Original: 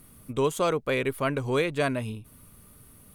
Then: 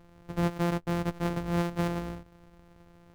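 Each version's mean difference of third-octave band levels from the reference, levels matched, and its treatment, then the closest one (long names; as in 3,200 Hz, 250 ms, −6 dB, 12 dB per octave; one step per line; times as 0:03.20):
8.5 dB: samples sorted by size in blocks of 256 samples
high-shelf EQ 2,400 Hz −11.5 dB
level −2.5 dB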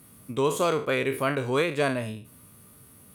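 2.0 dB: peak hold with a decay on every bin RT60 0.38 s
high-pass filter 94 Hz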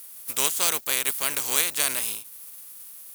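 12.5 dB: compressing power law on the bin magnitudes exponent 0.44
RIAA equalisation recording
level −5 dB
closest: second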